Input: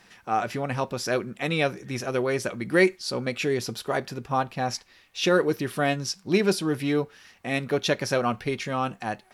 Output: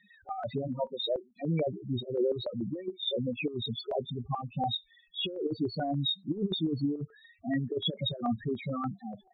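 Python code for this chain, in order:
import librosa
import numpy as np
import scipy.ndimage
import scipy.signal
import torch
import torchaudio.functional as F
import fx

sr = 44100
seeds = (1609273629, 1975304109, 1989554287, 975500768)

y = fx.freq_compress(x, sr, knee_hz=3300.0, ratio=4.0)
y = fx.spec_topn(y, sr, count=4)
y = fx.highpass(y, sr, hz=fx.line((0.67, 150.0), (1.36, 630.0)), slope=24, at=(0.67, 1.36), fade=0.02)
y = fx.over_compress(y, sr, threshold_db=-27.0, ratio=-0.5)
y = fx.filter_held_notch(y, sr, hz=6.9, low_hz=480.0, high_hz=1700.0)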